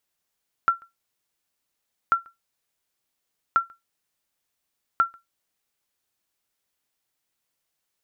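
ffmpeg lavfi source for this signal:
-f lavfi -i "aevalsrc='0.299*(sin(2*PI*1360*mod(t,1.44))*exp(-6.91*mod(t,1.44)/0.17)+0.0355*sin(2*PI*1360*max(mod(t,1.44)-0.14,0))*exp(-6.91*max(mod(t,1.44)-0.14,0)/0.17))':d=5.76:s=44100"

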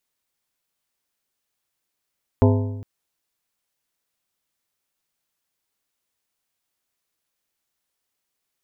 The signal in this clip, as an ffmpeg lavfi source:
-f lavfi -i "aevalsrc='0.251*pow(10,-3*t/1.15)*sin(2*PI*102*t)+0.178*pow(10,-3*t/0.874)*sin(2*PI*255*t)+0.126*pow(10,-3*t/0.759)*sin(2*PI*408*t)+0.0891*pow(10,-3*t/0.71)*sin(2*PI*510*t)+0.0631*pow(10,-3*t/0.656)*sin(2*PI*663*t)+0.0447*pow(10,-3*t/0.605)*sin(2*PI*867*t)+0.0316*pow(10,-3*t/0.595)*sin(2*PI*918*t)+0.0224*pow(10,-3*t/0.576)*sin(2*PI*1020*t)':d=0.41:s=44100"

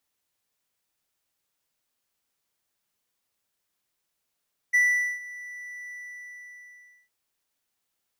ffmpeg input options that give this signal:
-f lavfi -i "aevalsrc='0.188*(1-4*abs(mod(1970*t+0.25,1)-0.5))':d=2.36:s=44100,afade=t=in:d=0.018,afade=t=out:st=0.018:d=0.443:silence=0.0944,afade=t=out:st=1.18:d=1.18"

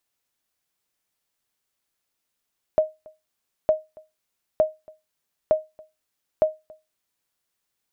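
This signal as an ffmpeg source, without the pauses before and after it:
-f lavfi -i "aevalsrc='0.316*(sin(2*PI*624*mod(t,0.91))*exp(-6.91*mod(t,0.91)/0.22)+0.0473*sin(2*PI*624*max(mod(t,0.91)-0.28,0))*exp(-6.91*max(mod(t,0.91)-0.28,0)/0.22))':d=4.55:s=44100"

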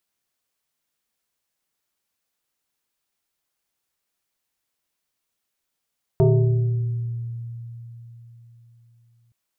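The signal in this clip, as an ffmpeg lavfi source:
-f lavfi -i "aevalsrc='0.266*pow(10,-3*t/4)*sin(2*PI*117*t+1.6*pow(10,-3*t/1.85)*sin(2*PI*2.28*117*t))':d=3.12:s=44100"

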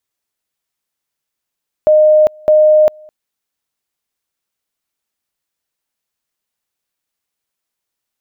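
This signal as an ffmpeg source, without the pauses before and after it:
-f lavfi -i "aevalsrc='pow(10,(-5-30*gte(mod(t,0.61),0.4))/20)*sin(2*PI*614*t)':d=1.22:s=44100"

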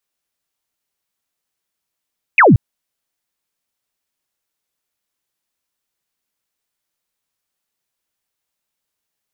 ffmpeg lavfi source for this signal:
-f lavfi -i "aevalsrc='0.562*clip(t/0.002,0,1)*clip((0.18-t)/0.002,0,1)*sin(2*PI*2700*0.18/log(91/2700)*(exp(log(91/2700)*t/0.18)-1))':d=0.18:s=44100"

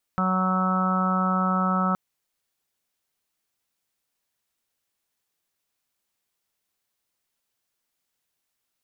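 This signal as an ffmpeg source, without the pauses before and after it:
-f lavfi -i "aevalsrc='0.0668*sin(2*PI*186*t)+0.00841*sin(2*PI*372*t)+0.0211*sin(2*PI*558*t)+0.0266*sin(2*PI*744*t)+0.0211*sin(2*PI*930*t)+0.0251*sin(2*PI*1116*t)+0.0596*sin(2*PI*1302*t)+0.00794*sin(2*PI*1488*t)':d=1.77:s=44100"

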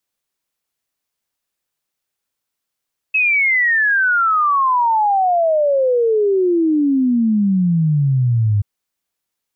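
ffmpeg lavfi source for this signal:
-f lavfi -i "aevalsrc='0.251*clip(min(t,5.48-t)/0.01,0,1)*sin(2*PI*2600*5.48/log(100/2600)*(exp(log(100/2600)*t/5.48)-1))':d=5.48:s=44100"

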